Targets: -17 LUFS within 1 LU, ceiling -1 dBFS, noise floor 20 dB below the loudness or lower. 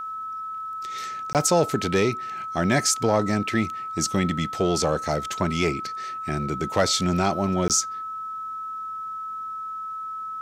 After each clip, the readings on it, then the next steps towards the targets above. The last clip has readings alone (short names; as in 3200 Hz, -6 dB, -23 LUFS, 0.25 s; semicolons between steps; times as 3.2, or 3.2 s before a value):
dropouts 2; longest dropout 18 ms; steady tone 1300 Hz; tone level -30 dBFS; loudness -25.0 LUFS; peak -8.0 dBFS; loudness target -17.0 LUFS
-> interpolate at 1.33/7.68, 18 ms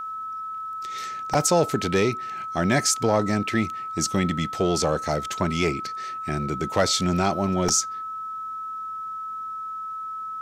dropouts 0; steady tone 1300 Hz; tone level -30 dBFS
-> notch 1300 Hz, Q 30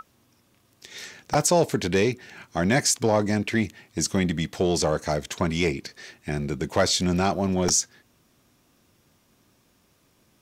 steady tone none; loudness -24.0 LUFS; peak -8.5 dBFS; loudness target -17.0 LUFS
-> gain +7 dB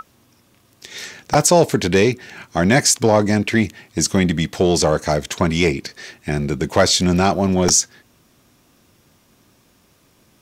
loudness -17.0 LUFS; peak -1.5 dBFS; noise floor -57 dBFS